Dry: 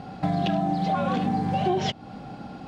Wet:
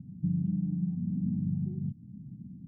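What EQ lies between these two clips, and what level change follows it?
HPF 95 Hz; inverse Chebyshev low-pass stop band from 520 Hz, stop band 50 dB; air absorption 340 m; 0.0 dB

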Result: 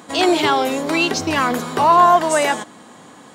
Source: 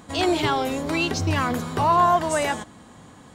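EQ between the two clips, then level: HPF 240 Hz 12 dB/oct; +6.5 dB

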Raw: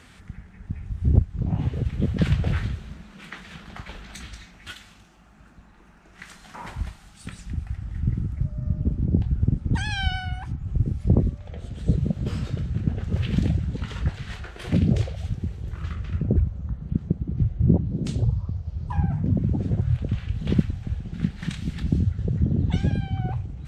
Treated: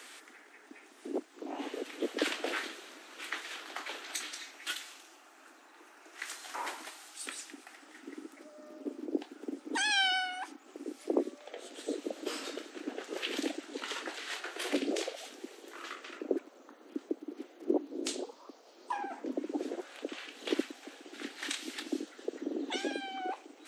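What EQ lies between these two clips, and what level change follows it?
steep high-pass 280 Hz 72 dB/oct; high shelf 4600 Hz +9 dB; 0.0 dB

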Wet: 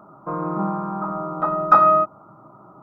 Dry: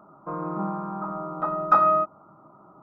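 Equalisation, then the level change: bell 120 Hz +8.5 dB 0.2 oct; notch 2700 Hz, Q 19; +5.0 dB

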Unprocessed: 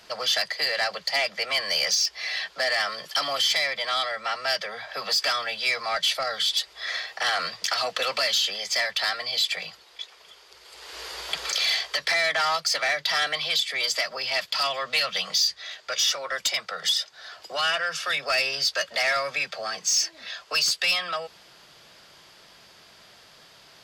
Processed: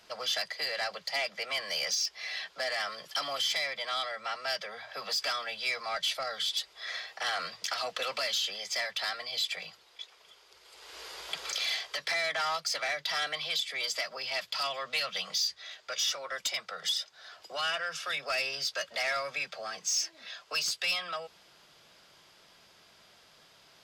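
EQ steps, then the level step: notches 60/120 Hz; notch 1800 Hz, Q 23; notch 4500 Hz, Q 25; -7.0 dB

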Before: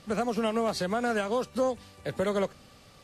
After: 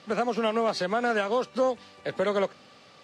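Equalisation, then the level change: BPF 140–5100 Hz; low shelf 230 Hz -8.5 dB; +4.0 dB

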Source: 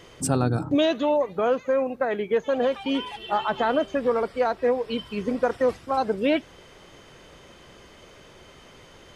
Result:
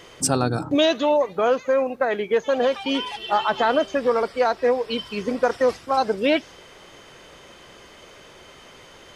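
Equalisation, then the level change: low shelf 290 Hz -7.5 dB; dynamic EQ 5300 Hz, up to +7 dB, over -54 dBFS, Q 1.8; +4.5 dB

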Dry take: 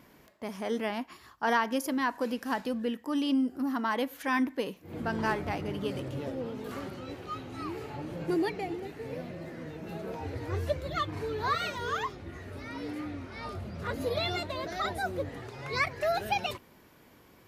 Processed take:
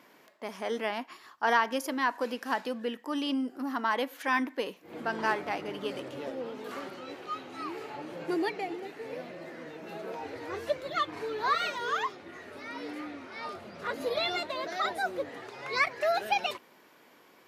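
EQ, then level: HPF 220 Hz 12 dB/oct; low shelf 320 Hz -9 dB; high shelf 7700 Hz -7.5 dB; +3.0 dB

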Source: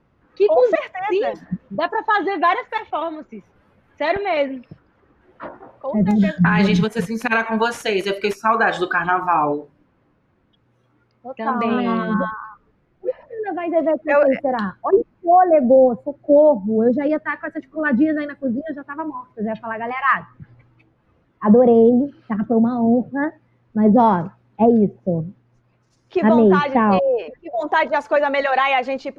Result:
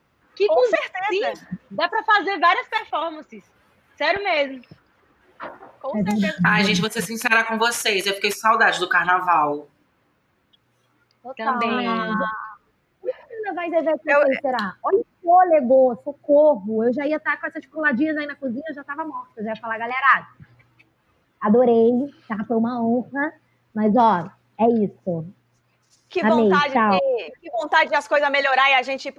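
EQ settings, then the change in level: HPF 41 Hz; tilt +3.5 dB/oct; low shelf 110 Hz +11 dB; 0.0 dB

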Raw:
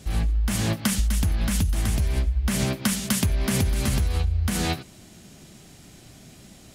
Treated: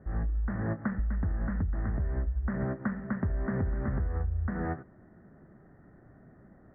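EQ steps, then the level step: rippled Chebyshev low-pass 1900 Hz, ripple 3 dB; -4.5 dB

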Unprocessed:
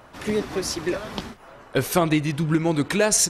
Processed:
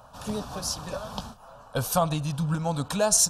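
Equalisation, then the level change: fixed phaser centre 850 Hz, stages 4; 0.0 dB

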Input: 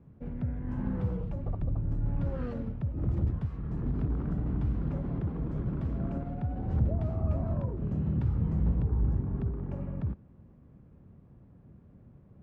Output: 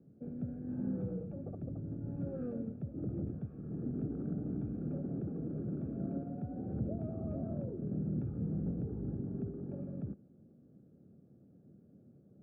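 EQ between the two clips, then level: running mean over 44 samples; HPF 220 Hz 12 dB/oct; air absorption 210 m; +2.0 dB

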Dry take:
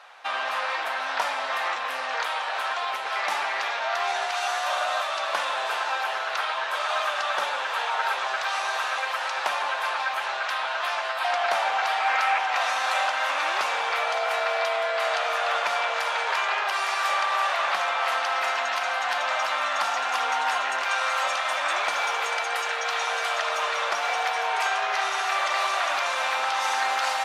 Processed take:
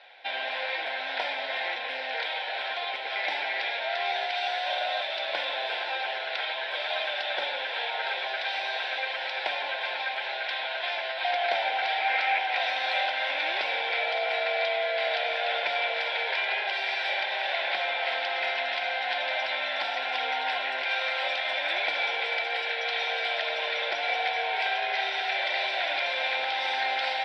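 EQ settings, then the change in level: Butterworth band-stop 1200 Hz, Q 7; speaker cabinet 390–4900 Hz, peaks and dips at 420 Hz -5 dB, 610 Hz -4 dB, 930 Hz -7 dB, 1800 Hz -5 dB, 2800 Hz -9 dB, 4500 Hz -6 dB; fixed phaser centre 2900 Hz, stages 4; +7.0 dB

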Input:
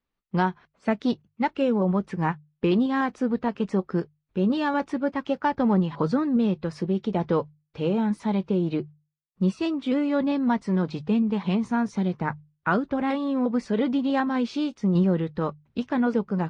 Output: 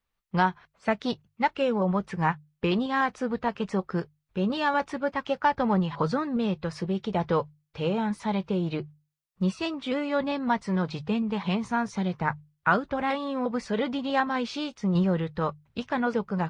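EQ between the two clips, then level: bell 280 Hz -10 dB 1.4 oct; +3.0 dB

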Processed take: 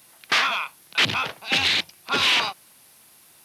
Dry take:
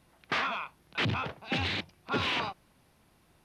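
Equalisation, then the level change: HPF 74 Hz; tilt +3 dB/oct; high shelf 5400 Hz +7 dB; +6.5 dB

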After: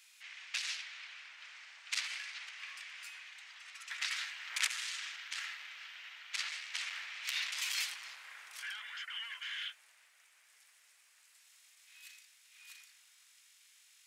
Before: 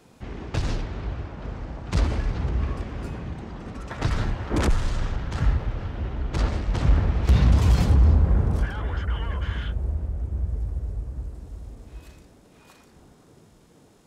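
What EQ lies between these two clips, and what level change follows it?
ladder high-pass 1800 Hz, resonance 40%; high shelf 3700 Hz +7.5 dB; +4.0 dB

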